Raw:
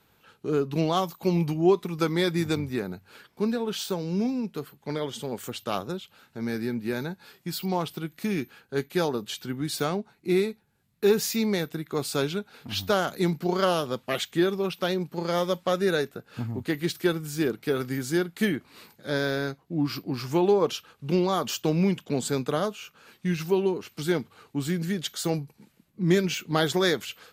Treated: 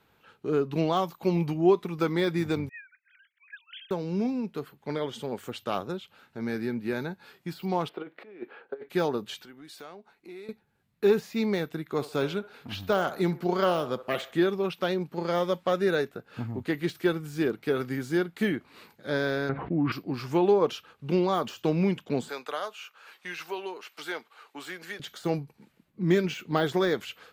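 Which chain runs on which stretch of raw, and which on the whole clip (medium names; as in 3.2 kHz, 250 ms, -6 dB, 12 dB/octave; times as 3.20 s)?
2.69–3.91 s: formants replaced by sine waves + steep high-pass 1.6 kHz 48 dB/octave
7.89–8.89 s: compressor with a negative ratio -34 dBFS, ratio -0.5 + resonant high-pass 460 Hz, resonance Q 1.9 + distance through air 450 m
9.42–10.49 s: compression 3:1, threshold -41 dBFS + peaking EQ 110 Hz -14.5 dB 2.1 oct
11.84–14.44 s: treble shelf 11 kHz +3 dB + feedback echo behind a band-pass 67 ms, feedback 35%, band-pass 870 Hz, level -13 dB
19.49–19.92 s: low-pass 2.5 kHz 24 dB/octave + level flattener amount 70%
22.29–25.00 s: high-pass 750 Hz + three bands compressed up and down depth 40%
whole clip: de-esser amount 75%; tone controls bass -3 dB, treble -8 dB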